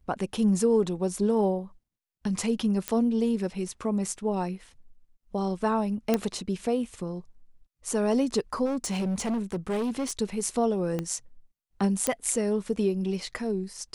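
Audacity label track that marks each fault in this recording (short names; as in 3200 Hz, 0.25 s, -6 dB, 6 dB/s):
2.880000	2.880000	pop -11 dBFS
6.140000	6.140000	pop -10 dBFS
8.650000	10.120000	clipped -25 dBFS
10.990000	10.990000	pop -17 dBFS
12.070000	12.070000	pop -9 dBFS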